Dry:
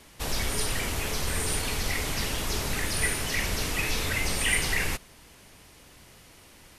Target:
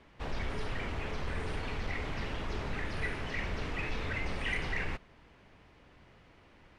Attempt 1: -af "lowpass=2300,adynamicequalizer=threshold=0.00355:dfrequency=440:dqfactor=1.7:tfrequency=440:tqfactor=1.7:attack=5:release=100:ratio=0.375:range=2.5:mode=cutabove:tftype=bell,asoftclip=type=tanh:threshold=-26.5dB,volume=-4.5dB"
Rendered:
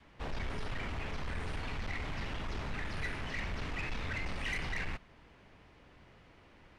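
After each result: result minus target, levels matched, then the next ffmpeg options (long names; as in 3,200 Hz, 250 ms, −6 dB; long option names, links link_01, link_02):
soft clipping: distortion +9 dB; 500 Hz band −2.5 dB
-af "lowpass=2300,adynamicequalizer=threshold=0.00355:dfrequency=440:dqfactor=1.7:tfrequency=440:tqfactor=1.7:attack=5:release=100:ratio=0.375:range=2.5:mode=cutabove:tftype=bell,asoftclip=type=tanh:threshold=-19.5dB,volume=-4.5dB"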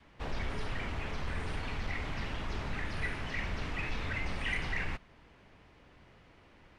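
500 Hz band −3.0 dB
-af "lowpass=2300,asoftclip=type=tanh:threshold=-19.5dB,volume=-4.5dB"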